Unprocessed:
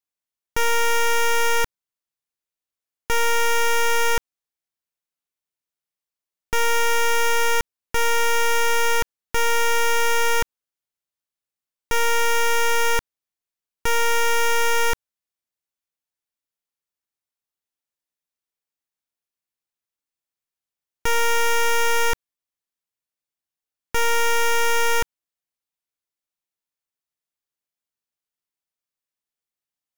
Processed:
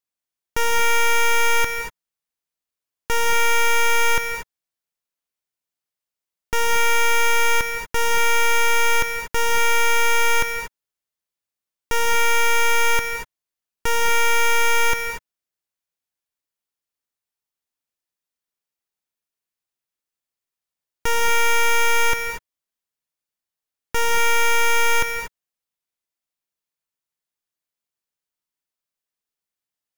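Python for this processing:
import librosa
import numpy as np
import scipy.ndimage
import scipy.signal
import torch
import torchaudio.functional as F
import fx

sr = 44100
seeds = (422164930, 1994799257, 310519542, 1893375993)

y = fx.rev_gated(x, sr, seeds[0], gate_ms=260, shape='rising', drr_db=4.5)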